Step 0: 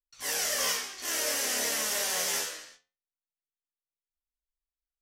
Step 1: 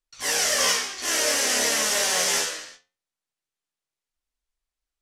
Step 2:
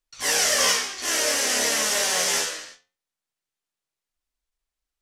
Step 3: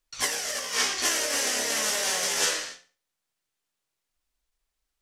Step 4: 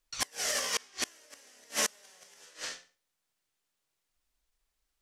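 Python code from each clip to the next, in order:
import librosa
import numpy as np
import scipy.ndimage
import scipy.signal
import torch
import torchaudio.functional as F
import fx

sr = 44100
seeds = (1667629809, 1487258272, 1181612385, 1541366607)

y1 = scipy.signal.sosfilt(scipy.signal.butter(2, 9600.0, 'lowpass', fs=sr, output='sos'), x)
y1 = F.gain(torch.from_numpy(y1), 8.0).numpy()
y2 = fx.rider(y1, sr, range_db=10, speed_s=2.0)
y2 = fx.end_taper(y2, sr, db_per_s=210.0)
y3 = fx.over_compress(y2, sr, threshold_db=-26.0, ratio=-0.5)
y3 = fx.echo_feedback(y3, sr, ms=63, feedback_pct=35, wet_db=-17)
y4 = fx.rattle_buzz(y3, sr, strikes_db=-44.0, level_db=-32.0)
y4 = fx.gate_flip(y4, sr, shuts_db=-17.0, range_db=-31)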